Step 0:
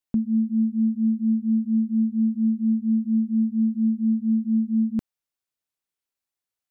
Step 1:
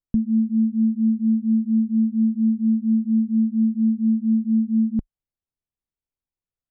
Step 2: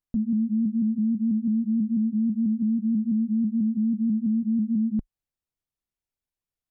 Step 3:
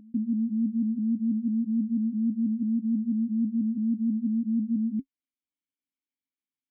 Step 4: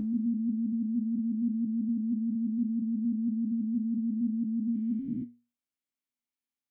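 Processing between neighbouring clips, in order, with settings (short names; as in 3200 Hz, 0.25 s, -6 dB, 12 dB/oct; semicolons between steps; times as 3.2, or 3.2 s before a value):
tilt -4.5 dB/oct; gain -7.5 dB
limiter -19.5 dBFS, peak gain reduction 9 dB; shaped vibrato saw up 6.1 Hz, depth 100 cents
vowel filter i; reverse echo 0.82 s -23.5 dB; gain +7 dB
spectral dilation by 0.48 s; resonator 120 Hz, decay 0.32 s, harmonics all, mix 70%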